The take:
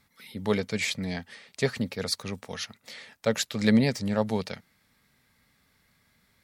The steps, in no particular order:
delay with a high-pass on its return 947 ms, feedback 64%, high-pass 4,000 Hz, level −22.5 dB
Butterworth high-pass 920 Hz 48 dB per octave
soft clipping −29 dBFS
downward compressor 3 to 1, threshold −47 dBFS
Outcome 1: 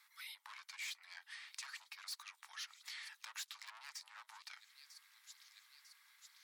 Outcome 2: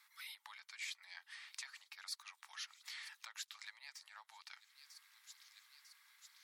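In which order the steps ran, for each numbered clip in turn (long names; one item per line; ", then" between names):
delay with a high-pass on its return, then soft clipping, then downward compressor, then Butterworth high-pass
delay with a high-pass on its return, then downward compressor, then soft clipping, then Butterworth high-pass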